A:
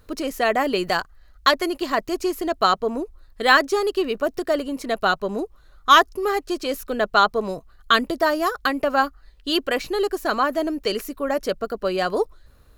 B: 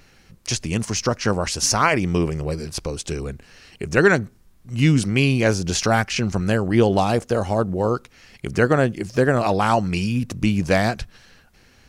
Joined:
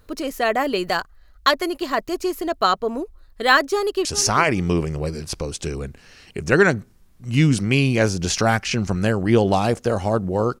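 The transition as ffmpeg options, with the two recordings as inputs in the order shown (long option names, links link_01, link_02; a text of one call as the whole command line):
ffmpeg -i cue0.wav -i cue1.wav -filter_complex "[0:a]apad=whole_dur=10.6,atrim=end=10.6,atrim=end=4.052[link_01];[1:a]atrim=start=1.498:end=8.05[link_02];[link_01][link_02]acrossfade=duration=0.004:curve1=hsin:curve2=hsin,asplit=2[link_03][link_04];[link_04]afade=type=in:start_time=3.73:duration=0.01,afade=type=out:start_time=4.05:duration=0.01,aecho=0:1:400|800|1200:0.251189|0.0502377|0.0100475[link_05];[link_03][link_05]amix=inputs=2:normalize=0" out.wav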